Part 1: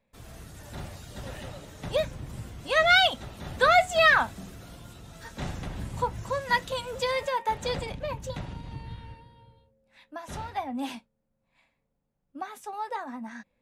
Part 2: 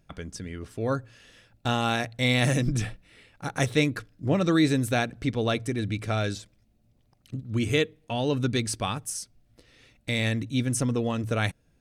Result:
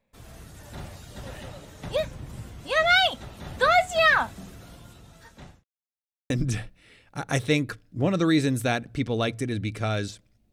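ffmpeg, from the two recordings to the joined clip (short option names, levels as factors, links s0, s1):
-filter_complex "[0:a]apad=whole_dur=10.52,atrim=end=10.52,asplit=2[s0][s1];[s0]atrim=end=5.64,asetpts=PTS-STARTPTS,afade=t=out:st=4.43:d=1.21:c=qsin[s2];[s1]atrim=start=5.64:end=6.3,asetpts=PTS-STARTPTS,volume=0[s3];[1:a]atrim=start=2.57:end=6.79,asetpts=PTS-STARTPTS,afade=t=in:d=0.004:c=hsin[s4];[s2][s3][s4]concat=n=3:v=0:a=1"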